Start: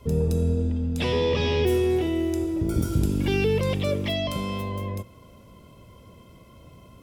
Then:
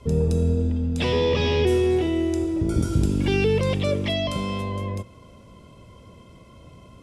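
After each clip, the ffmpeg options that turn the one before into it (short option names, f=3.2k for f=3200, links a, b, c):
-af "lowpass=f=10k:w=0.5412,lowpass=f=10k:w=1.3066,volume=2dB"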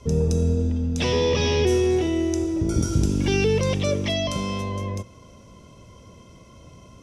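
-af "equalizer=f=5.9k:t=o:w=0.31:g=13"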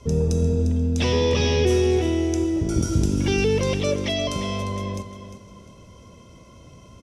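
-af "aecho=1:1:351|702|1053:0.282|0.0874|0.0271"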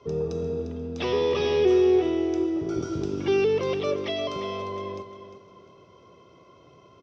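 -af "highpass=150,equalizer=f=220:t=q:w=4:g=-9,equalizer=f=390:t=q:w=4:g=10,equalizer=f=740:t=q:w=4:g=5,equalizer=f=1.2k:t=q:w=4:g=9,lowpass=f=4.8k:w=0.5412,lowpass=f=4.8k:w=1.3066,volume=-6dB"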